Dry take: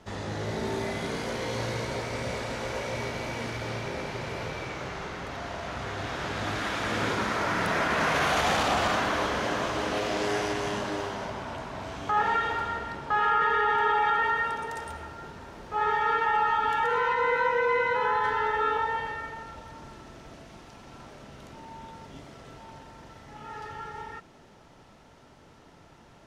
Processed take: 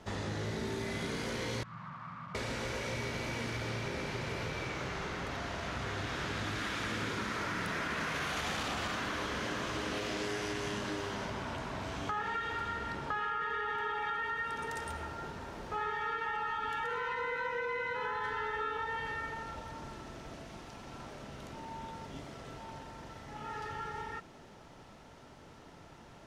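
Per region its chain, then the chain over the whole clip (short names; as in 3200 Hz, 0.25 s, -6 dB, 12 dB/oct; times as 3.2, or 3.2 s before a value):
1.63–2.35 infinite clipping + double band-pass 440 Hz, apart 2.8 oct + air absorption 100 m
whole clip: dynamic EQ 710 Hz, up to -8 dB, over -42 dBFS, Q 1.2; compressor, threshold -33 dBFS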